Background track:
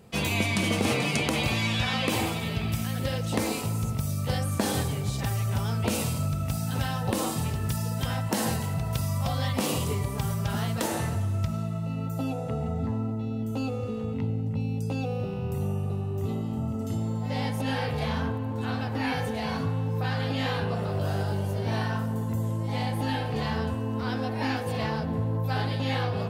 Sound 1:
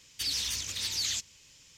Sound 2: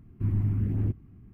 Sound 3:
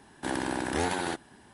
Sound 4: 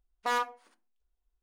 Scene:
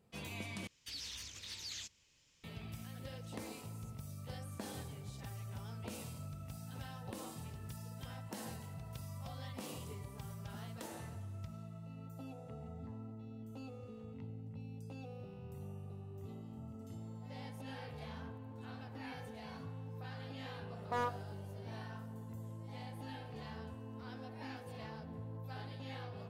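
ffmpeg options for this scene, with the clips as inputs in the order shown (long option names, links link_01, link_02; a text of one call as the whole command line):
ffmpeg -i bed.wav -i cue0.wav -i cue1.wav -i cue2.wav -i cue3.wav -filter_complex "[0:a]volume=-18.5dB[link_01];[1:a]highshelf=frequency=4300:gain=-8[link_02];[4:a]tiltshelf=frequency=970:gain=7.5[link_03];[link_01]asplit=2[link_04][link_05];[link_04]atrim=end=0.674[link_06];[link_02]atrim=end=1.77,asetpts=PTS-STARTPTS,volume=-10dB[link_07];[link_05]atrim=start=2.436[link_08];[link_03]atrim=end=1.42,asetpts=PTS-STARTPTS,volume=-7.5dB,afade=type=in:duration=0.004:curve=hsin,afade=type=out:start_time=1.416:duration=0.004:curve=hsin,adelay=20660[link_09];[link_06][link_07]acrossfade=duration=0.004:curve1=hsin:curve2=hsin[link_10];[link_10][link_08]acrossfade=duration=0.004:curve1=hsin:curve2=hsin[link_11];[link_11][link_09]amix=inputs=2:normalize=0" out.wav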